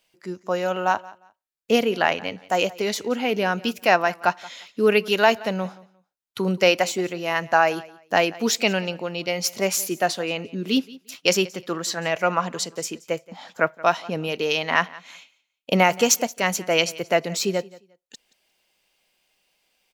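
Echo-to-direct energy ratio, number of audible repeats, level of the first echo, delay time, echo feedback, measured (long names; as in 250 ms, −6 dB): −21.0 dB, 2, −21.0 dB, 176 ms, 22%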